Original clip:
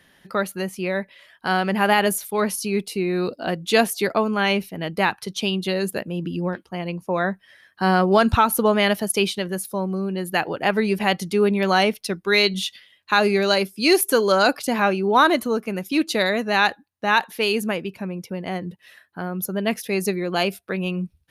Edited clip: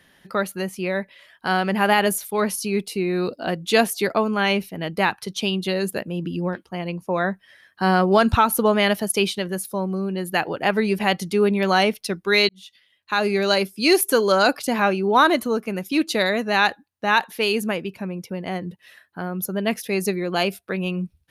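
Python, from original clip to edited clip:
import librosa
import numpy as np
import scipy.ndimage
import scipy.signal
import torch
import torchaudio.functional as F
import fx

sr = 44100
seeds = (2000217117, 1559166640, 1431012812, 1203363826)

y = fx.edit(x, sr, fx.fade_in_span(start_s=12.49, length_s=1.05), tone=tone)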